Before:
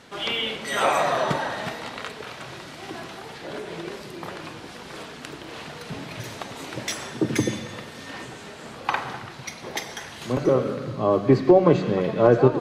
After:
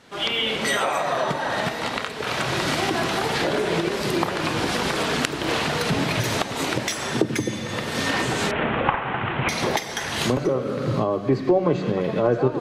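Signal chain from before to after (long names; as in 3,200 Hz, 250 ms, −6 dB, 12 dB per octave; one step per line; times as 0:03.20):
0:08.51–0:09.49: variable-slope delta modulation 16 kbit/s
camcorder AGC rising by 38 dB per second
level −4 dB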